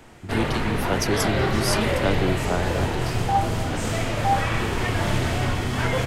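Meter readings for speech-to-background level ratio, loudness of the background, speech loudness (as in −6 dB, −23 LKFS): −3.0 dB, −24.5 LKFS, −27.5 LKFS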